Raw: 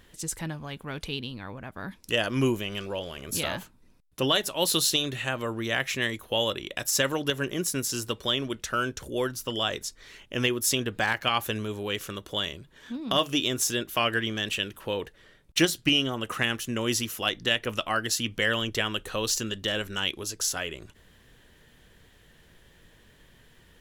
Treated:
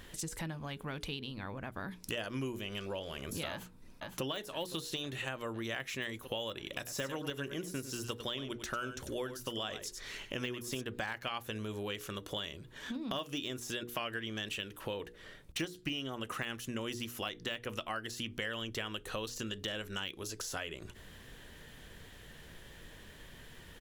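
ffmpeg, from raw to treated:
-filter_complex "[0:a]asplit=2[a][b];[b]afade=t=in:st=3.5:d=0.01,afade=t=out:st=4.23:d=0.01,aecho=0:1:510|1020|1530|2040|2550|3060|3570|4080|4590|5100|5610|6120:0.199526|0.159621|0.127697|0.102157|0.0817259|0.0653808|0.0523046|0.0418437|0.0334749|0.02678|0.021424|0.0171392[c];[a][c]amix=inputs=2:normalize=0,asplit=3[d][e][f];[d]afade=t=out:st=6.64:d=0.02[g];[e]aecho=1:1:97:0.251,afade=t=in:st=6.64:d=0.02,afade=t=out:st=10.8:d=0.02[h];[f]afade=t=in:st=10.8:d=0.02[i];[g][h][i]amix=inputs=3:normalize=0,deesser=0.65,bandreject=f=60:t=h:w=6,bandreject=f=120:t=h:w=6,bandreject=f=180:t=h:w=6,bandreject=f=240:t=h:w=6,bandreject=f=300:t=h:w=6,bandreject=f=360:t=h:w=6,bandreject=f=420:t=h:w=6,bandreject=f=480:t=h:w=6,acompressor=threshold=-43dB:ratio=4,volume=4.5dB"

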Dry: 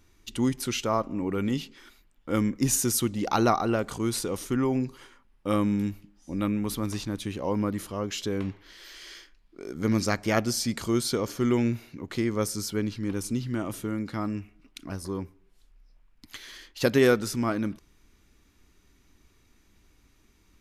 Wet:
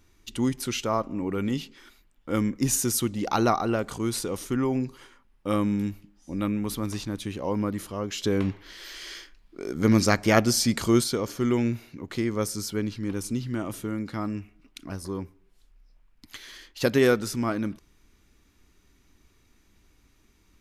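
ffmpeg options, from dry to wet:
-filter_complex "[0:a]asplit=3[a][b][c];[a]atrim=end=8.242[d];[b]atrim=start=8.238:end=11.042,asetpts=PTS-STARTPTS,volume=5dB[e];[c]atrim=start=11.038[f];[d][e]acrossfade=d=0.004:c1=hsin:c2=hsin[g];[g][f]acrossfade=d=0.004:c1=hsin:c2=hsin"

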